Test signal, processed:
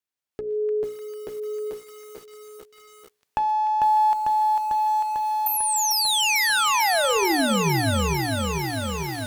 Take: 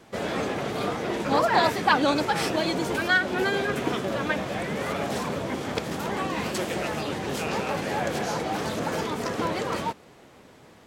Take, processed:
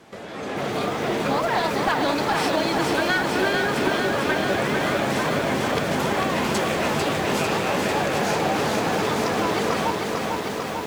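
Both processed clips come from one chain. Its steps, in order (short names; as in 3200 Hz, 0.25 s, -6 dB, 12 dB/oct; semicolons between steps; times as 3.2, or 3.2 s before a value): compressor 4:1, threshold -41 dBFS; HPF 77 Hz 6 dB/oct; high shelf 6800 Hz -3.5 dB; notches 60/120/180/240/300/360/420/480/540/600 Hz; thin delay 0.3 s, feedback 72%, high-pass 2000 Hz, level -12.5 dB; one-sided clip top -37 dBFS; AGC gain up to 14 dB; lo-fi delay 0.447 s, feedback 80%, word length 8-bit, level -4 dB; gain +3 dB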